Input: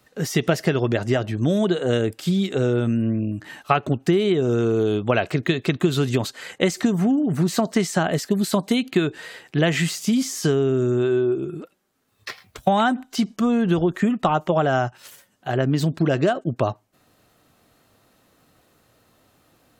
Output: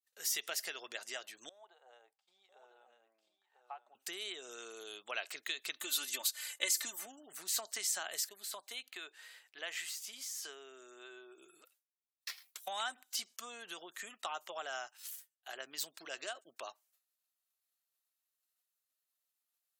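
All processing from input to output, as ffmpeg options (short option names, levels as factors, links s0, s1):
-filter_complex "[0:a]asettb=1/sr,asplit=3[s0][s1][s2];[s0]atrim=end=1.494[s3];[s1]atrim=start=1.49:end=3.95,asetpts=PTS-STARTPTS,afade=t=in:d=0.004:c=qsin,afade=t=out:st=2.456:d=0.004:c=qsin,bandpass=f=810:t=q:w=6,aecho=1:1:995:0.422,atrim=end_sample=108486[s4];[s2]atrim=start=3.946[s5];[s3][s4]acrossfade=d=0.004:c1=hsin:c2=qsin[s6];[s6][s5]acrossfade=d=0.004:c1=qsin:c2=hsin,asettb=1/sr,asplit=3[s7][s8][s9];[s7]atrim=end=5.764[s10];[s8]atrim=start=5.76:end=7.06,asetpts=PTS-STARTPTS,afade=t=in:d=0.004:c=qsin,afade=t=out:st=1.296:d=0.004:c=qsin,equalizer=f=12000:w=1.5:g=6,aecho=1:1:3.4:0.89,atrim=end_sample=57330[s11];[s9]atrim=start=7.056[s12];[s10][s11]acrossfade=d=0.004:c1=hsin:c2=qsin[s13];[s13][s12]acrossfade=d=0.004:c1=qsin:c2=hsin,asettb=1/sr,asplit=3[s14][s15][s16];[s14]atrim=end=8.294[s17];[s15]atrim=start=8.29:end=11.38,asetpts=PTS-STARTPTS,afade=t=in:d=0.004:c=qsin,afade=t=out:st=3.086:d=0.004:c=qsin,highpass=f=390:p=1,equalizer=f=11000:t=o:w=2.8:g=-10.5[s18];[s16]atrim=start=11.376[s19];[s17][s18]acrossfade=d=0.004:c1=hsin:c2=qsin[s20];[s20][s19]acrossfade=d=0.004:c1=qsin:c2=hsin,agate=range=0.0224:threshold=0.00447:ratio=3:detection=peak,highpass=470,aderivative,volume=0.75"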